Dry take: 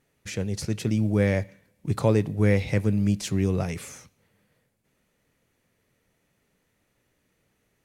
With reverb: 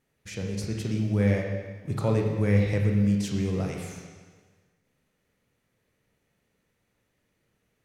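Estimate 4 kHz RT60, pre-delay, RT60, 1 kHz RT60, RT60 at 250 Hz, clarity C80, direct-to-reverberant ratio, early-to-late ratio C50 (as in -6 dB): 1.4 s, 29 ms, 1.4 s, 1.4 s, 1.4 s, 4.0 dB, 0.5 dB, 3.0 dB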